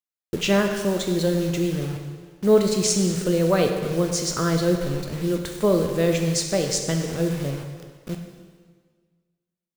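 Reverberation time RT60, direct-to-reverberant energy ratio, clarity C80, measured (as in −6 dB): 1.6 s, 3.0 dB, 6.5 dB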